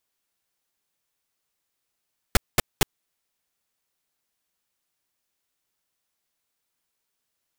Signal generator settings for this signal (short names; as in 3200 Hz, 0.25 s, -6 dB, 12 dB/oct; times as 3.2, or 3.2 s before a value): noise bursts pink, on 0.02 s, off 0.21 s, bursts 3, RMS -16 dBFS